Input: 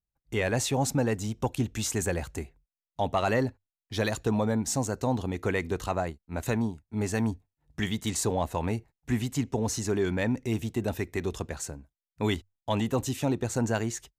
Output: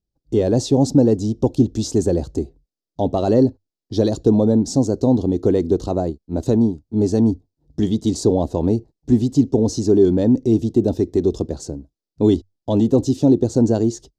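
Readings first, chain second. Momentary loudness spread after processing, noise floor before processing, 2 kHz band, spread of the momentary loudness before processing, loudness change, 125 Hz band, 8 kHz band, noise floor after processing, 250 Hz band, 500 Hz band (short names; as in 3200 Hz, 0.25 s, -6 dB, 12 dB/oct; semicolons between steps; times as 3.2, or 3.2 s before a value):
9 LU, under -85 dBFS, under -10 dB, 8 LU, +11.5 dB, +9.5 dB, 0.0 dB, under -85 dBFS, +14.0 dB, +12.0 dB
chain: EQ curve 100 Hz 0 dB, 210 Hz +3 dB, 310 Hz +9 dB, 630 Hz -1 dB, 1200 Hz -15 dB, 2300 Hz -25 dB, 3300 Hz -10 dB, 4800 Hz -1 dB, 13000 Hz -21 dB; gain +8.5 dB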